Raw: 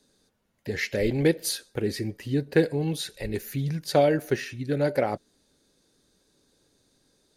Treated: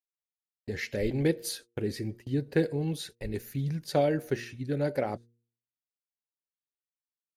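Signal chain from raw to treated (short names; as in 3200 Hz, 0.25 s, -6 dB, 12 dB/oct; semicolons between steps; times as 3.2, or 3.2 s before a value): gate -39 dBFS, range -46 dB; low shelf 350 Hz +4.5 dB; de-hum 117.5 Hz, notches 4; gain -6.5 dB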